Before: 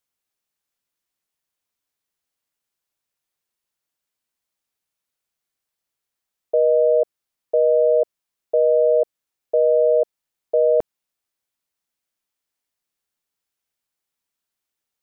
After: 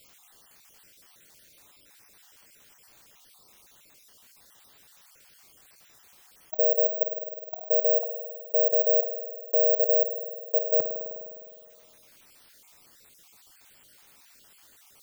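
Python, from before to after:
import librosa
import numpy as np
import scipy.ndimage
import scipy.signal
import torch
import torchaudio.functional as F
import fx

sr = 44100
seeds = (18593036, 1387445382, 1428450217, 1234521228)

y = fx.spec_dropout(x, sr, seeds[0], share_pct=39)
y = fx.highpass(y, sr, hz=270.0, slope=6, at=(6.62, 8.89))
y = fx.rev_spring(y, sr, rt60_s=1.1, pass_ms=(51,), chirp_ms=70, drr_db=14.0)
y = (np.kron(scipy.signal.resample_poly(y, 1, 2), np.eye(2)[0]) * 2)[:len(y)]
y = fx.env_flatten(y, sr, amount_pct=50)
y = F.gain(torch.from_numpy(y), -8.0).numpy()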